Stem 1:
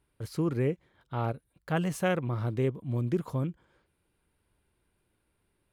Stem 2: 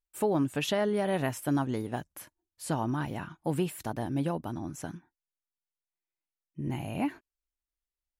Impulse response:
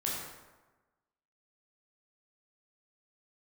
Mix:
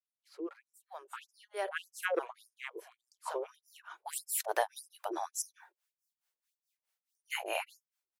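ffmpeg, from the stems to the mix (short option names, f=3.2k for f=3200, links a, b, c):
-filter_complex "[0:a]lowpass=f=1.6k:p=1,volume=-2.5dB,asplit=2[a][b];[1:a]equalizer=f=1.6k:t=o:w=0.77:g=2,adelay=600,volume=0.5dB[c];[b]apad=whole_len=387832[d];[c][d]sidechaincompress=threshold=-49dB:ratio=6:attack=12:release=521[e];[a][e]amix=inputs=2:normalize=0,dynaudnorm=f=390:g=7:m=12dB,acrossover=split=500[f][g];[f]aeval=exprs='val(0)*(1-1/2+1/2*cos(2*PI*4.7*n/s))':c=same[h];[g]aeval=exprs='val(0)*(1-1/2-1/2*cos(2*PI*4.7*n/s))':c=same[i];[h][i]amix=inputs=2:normalize=0,afftfilt=real='re*gte(b*sr/1024,320*pow(5000/320,0.5+0.5*sin(2*PI*1.7*pts/sr)))':imag='im*gte(b*sr/1024,320*pow(5000/320,0.5+0.5*sin(2*PI*1.7*pts/sr)))':win_size=1024:overlap=0.75"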